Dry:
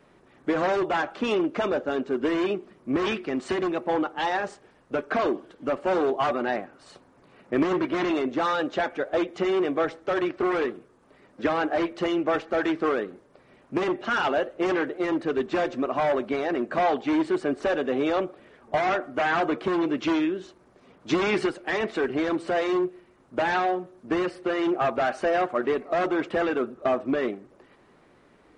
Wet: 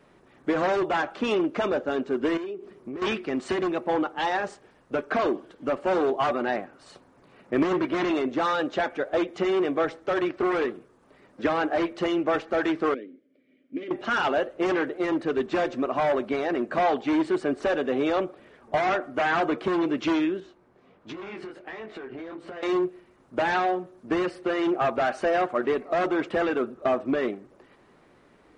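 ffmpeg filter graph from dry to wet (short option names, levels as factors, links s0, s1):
-filter_complex "[0:a]asettb=1/sr,asplit=3[s0][s1][s2];[s0]atrim=end=2.374[s3];[s1]atrim=start=2.37:end=3.02,asetpts=PTS-STARTPTS,afade=t=in:d=0.004:c=qsin,afade=t=out:st=0.646:d=0.004:c=qsin,equalizer=f=400:w=5.8:g=11,acompressor=threshold=0.0251:ratio=8:attack=3.2:release=140:knee=1:detection=peak[s4];[s2]atrim=start=3.016[s5];[s3][s4]acrossfade=d=0.004:c1=hsin:c2=qsin[s6];[s6][s5]acrossfade=d=0.004:c1=qsin:c2=hsin,asettb=1/sr,asplit=3[s7][s8][s9];[s7]atrim=end=12.944[s10];[s8]atrim=start=12.94:end=13.91,asetpts=PTS-STARTPTS,afade=t=in:d=0.004:c=qsin,afade=t=out:st=0.966:d=0.004:c=qsin,asplit=3[s11][s12][s13];[s11]bandpass=f=270:t=q:w=8,volume=1[s14];[s12]bandpass=f=2290:t=q:w=8,volume=0.501[s15];[s13]bandpass=f=3010:t=q:w=8,volume=0.355[s16];[s14][s15][s16]amix=inputs=3:normalize=0,equalizer=f=570:w=1.6:g=13.5[s17];[s9]atrim=start=13.906[s18];[s10][s17]acrossfade=d=0.004:c1=hsin:c2=qsin[s19];[s19][s18]acrossfade=d=0.004:c1=qsin:c2=hsin,asettb=1/sr,asplit=3[s20][s21][s22];[s20]atrim=end=20.404[s23];[s21]atrim=start=20.4:end=22.63,asetpts=PTS-STARTPTS,afade=t=in:d=0.004:c=qsin,afade=t=out:st=2.226:d=0.004:c=qsin,bass=f=250:g=-1,treble=f=4000:g=-10,flanger=delay=18:depth=6.8:speed=1.4,acompressor=threshold=0.02:ratio=12:attack=3.2:release=140:knee=1:detection=peak[s24];[s22]atrim=start=22.626[s25];[s23][s24]acrossfade=d=0.004:c1=hsin:c2=qsin[s26];[s26][s25]acrossfade=d=0.004:c1=qsin:c2=hsin"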